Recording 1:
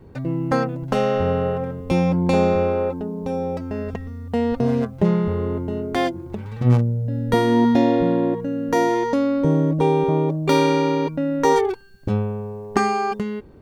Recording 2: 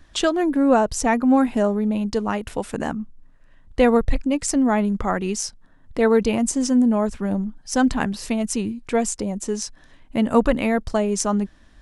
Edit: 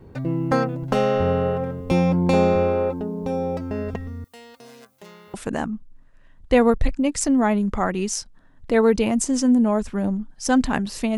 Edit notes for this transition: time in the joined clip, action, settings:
recording 1
4.24–5.34 s: differentiator
5.34 s: go over to recording 2 from 2.61 s

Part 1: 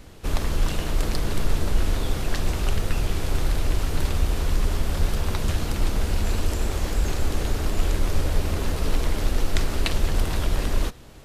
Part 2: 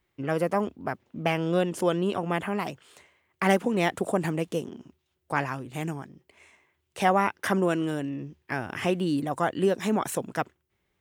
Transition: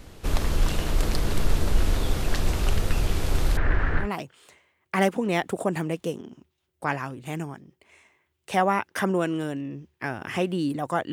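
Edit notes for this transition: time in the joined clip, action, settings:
part 1
3.57–4.09 s: resonant low-pass 1.7 kHz, resonance Q 5.1
4.03 s: go over to part 2 from 2.51 s, crossfade 0.12 s

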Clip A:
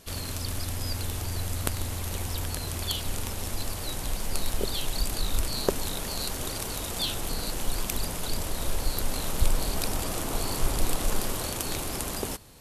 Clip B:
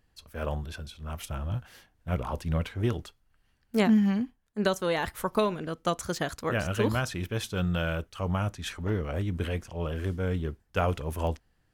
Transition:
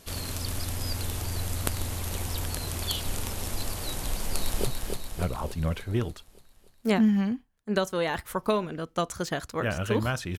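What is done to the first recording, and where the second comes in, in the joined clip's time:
clip A
4.27–4.67 s: echo throw 290 ms, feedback 60%, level -4.5 dB
4.67 s: go over to clip B from 1.56 s

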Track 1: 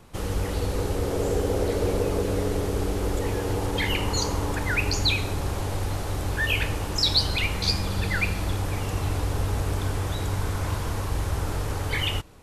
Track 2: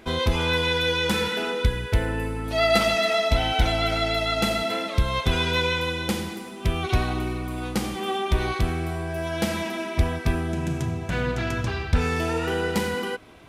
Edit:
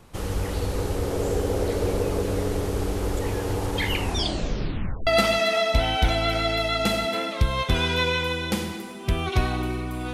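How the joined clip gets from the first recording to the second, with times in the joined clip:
track 1
3.98 s: tape stop 1.09 s
5.07 s: go over to track 2 from 2.64 s

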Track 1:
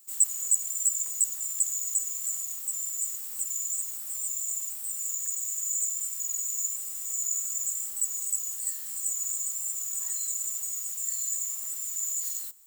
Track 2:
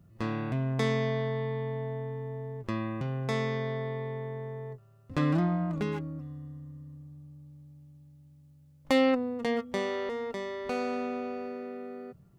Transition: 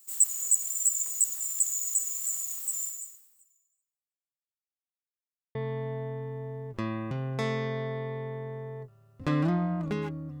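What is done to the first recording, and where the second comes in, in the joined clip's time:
track 1
2.84–4.72 s: fade out exponential
4.72–5.55 s: mute
5.55 s: go over to track 2 from 1.45 s

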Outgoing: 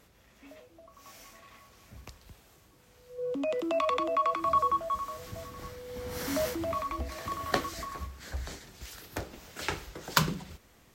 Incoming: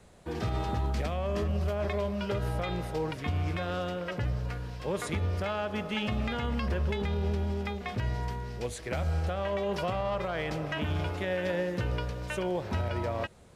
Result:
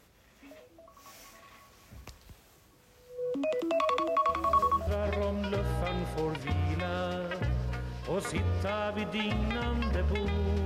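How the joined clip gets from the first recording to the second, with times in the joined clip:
outgoing
4.29 s: add incoming from 1.06 s 0.58 s -11.5 dB
4.87 s: go over to incoming from 1.64 s

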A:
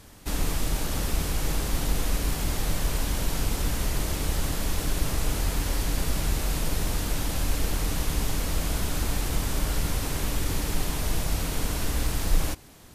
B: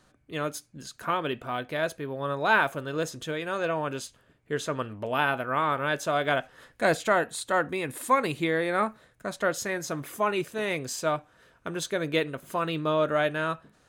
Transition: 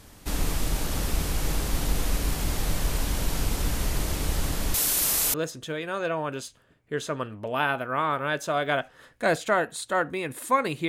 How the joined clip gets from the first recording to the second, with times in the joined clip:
A
4.74–5.34 s: RIAA curve recording
5.34 s: go over to B from 2.93 s

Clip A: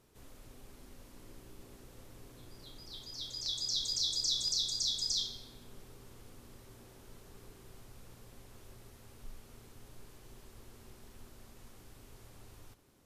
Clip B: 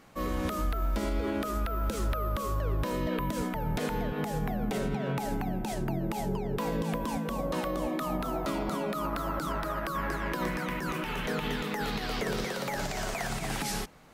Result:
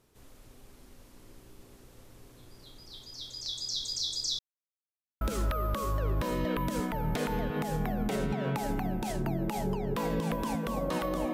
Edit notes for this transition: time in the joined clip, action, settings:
clip A
4.39–5.21 s: mute
5.21 s: go over to clip B from 1.83 s

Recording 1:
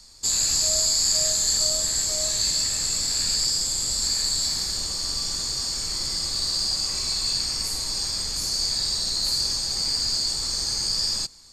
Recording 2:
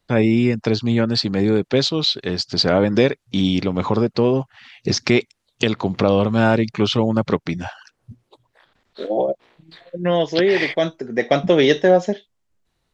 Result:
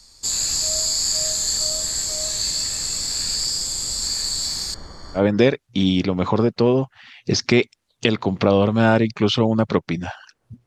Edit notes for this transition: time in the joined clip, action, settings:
recording 1
4.74–5.22 s: Savitzky-Golay filter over 41 samples
5.18 s: go over to recording 2 from 2.76 s, crossfade 0.08 s

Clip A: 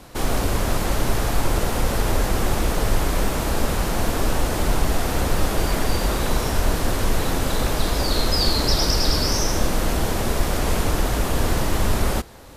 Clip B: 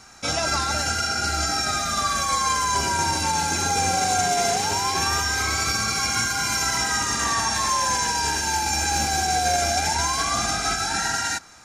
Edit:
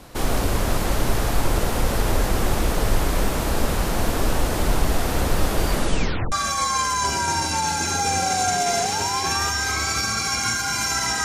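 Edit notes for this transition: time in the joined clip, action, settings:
clip A
5.73 s: tape stop 0.59 s
6.32 s: go over to clip B from 2.03 s

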